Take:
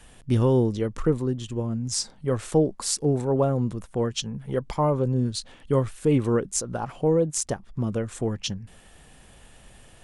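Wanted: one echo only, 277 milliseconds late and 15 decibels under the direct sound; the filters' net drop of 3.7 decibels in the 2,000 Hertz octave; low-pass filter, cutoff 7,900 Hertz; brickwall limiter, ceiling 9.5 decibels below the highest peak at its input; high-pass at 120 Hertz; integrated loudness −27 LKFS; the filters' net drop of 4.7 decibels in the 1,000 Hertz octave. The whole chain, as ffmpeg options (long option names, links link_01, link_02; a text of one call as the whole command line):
ffmpeg -i in.wav -af "highpass=120,lowpass=7900,equalizer=frequency=1000:width_type=o:gain=-5.5,equalizer=frequency=2000:width_type=o:gain=-3,alimiter=limit=-19dB:level=0:latency=1,aecho=1:1:277:0.178,volume=3.5dB" out.wav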